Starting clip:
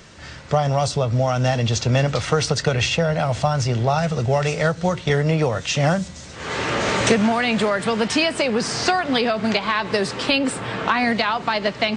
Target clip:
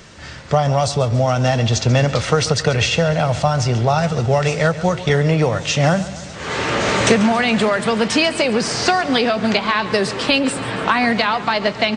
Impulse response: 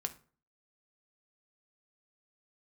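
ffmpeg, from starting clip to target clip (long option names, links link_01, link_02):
-af "aecho=1:1:139|278|417|556|695|834:0.158|0.0935|0.0552|0.0326|0.0192|0.0113,volume=3dB"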